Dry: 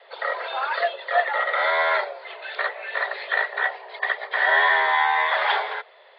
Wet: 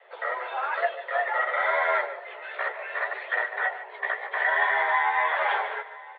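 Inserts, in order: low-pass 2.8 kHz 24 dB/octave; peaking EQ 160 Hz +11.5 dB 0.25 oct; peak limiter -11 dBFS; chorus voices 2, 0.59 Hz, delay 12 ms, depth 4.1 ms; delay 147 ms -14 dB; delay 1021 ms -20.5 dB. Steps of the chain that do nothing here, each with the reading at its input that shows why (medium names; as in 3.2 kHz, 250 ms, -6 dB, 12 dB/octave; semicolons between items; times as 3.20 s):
peaking EQ 160 Hz: input has nothing below 360 Hz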